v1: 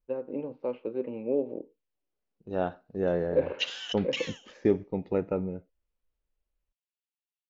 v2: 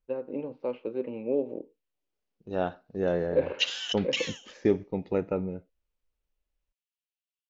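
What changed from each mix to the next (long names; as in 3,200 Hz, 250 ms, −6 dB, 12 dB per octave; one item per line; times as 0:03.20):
master: add high-shelf EQ 2,900 Hz +7.5 dB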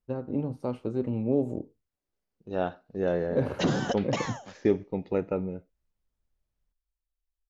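first voice: remove loudspeaker in its box 360–3,400 Hz, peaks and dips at 510 Hz +6 dB, 720 Hz −7 dB, 1,300 Hz −6 dB, 2,500 Hz +7 dB
background: remove high-pass with resonance 2,800 Hz, resonance Q 4.3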